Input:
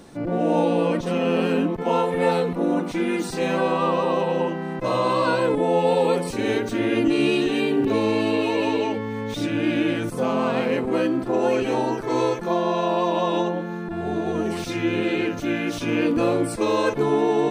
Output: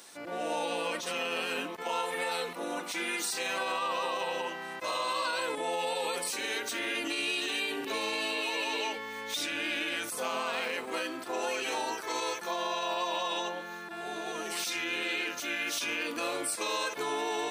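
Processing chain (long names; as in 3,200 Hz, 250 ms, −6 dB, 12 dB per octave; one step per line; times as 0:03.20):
high-pass filter 1,200 Hz 6 dB per octave
spectral tilt +2.5 dB per octave
brickwall limiter −21.5 dBFS, peak gain reduction 8 dB
level −1.5 dB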